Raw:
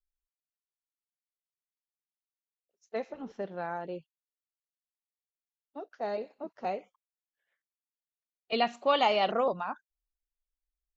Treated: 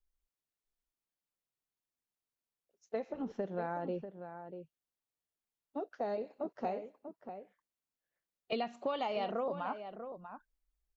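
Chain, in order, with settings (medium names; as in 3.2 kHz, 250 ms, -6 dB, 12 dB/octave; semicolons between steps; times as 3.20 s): tilt shelf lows +4 dB, about 870 Hz; compression 6:1, threshold -36 dBFS, peak gain reduction 15 dB; echo from a far wall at 110 m, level -9 dB; trim +2.5 dB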